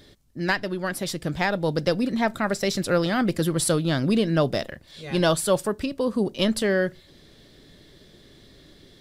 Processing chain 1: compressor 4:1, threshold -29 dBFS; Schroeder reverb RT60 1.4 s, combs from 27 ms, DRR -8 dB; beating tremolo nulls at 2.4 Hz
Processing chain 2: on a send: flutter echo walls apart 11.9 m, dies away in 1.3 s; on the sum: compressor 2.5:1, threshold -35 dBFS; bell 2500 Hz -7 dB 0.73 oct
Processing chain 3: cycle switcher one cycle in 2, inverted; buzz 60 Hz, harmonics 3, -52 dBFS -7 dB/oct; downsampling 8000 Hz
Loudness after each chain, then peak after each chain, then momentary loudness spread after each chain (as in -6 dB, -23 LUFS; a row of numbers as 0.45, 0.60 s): -27.0, -33.5, -24.5 LUFS; -10.5, -19.0, -9.0 dBFS; 20, 17, 8 LU